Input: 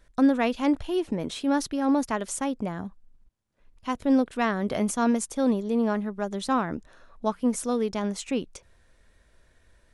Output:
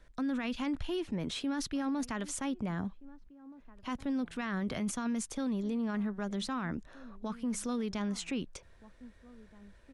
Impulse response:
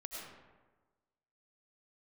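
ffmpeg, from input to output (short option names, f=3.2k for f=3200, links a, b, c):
-filter_complex "[0:a]acrossover=split=290|1100|3400[a][b][c][d];[b]acompressor=threshold=-41dB:ratio=6[e];[a][e][c][d]amix=inputs=4:normalize=0,highshelf=f=8.3k:g=-11.5,asplit=2[f][g];[g]adelay=1574,volume=-24dB,highshelf=f=4k:g=-35.4[h];[f][h]amix=inputs=2:normalize=0,alimiter=level_in=3.5dB:limit=-24dB:level=0:latency=1:release=22,volume=-3.5dB"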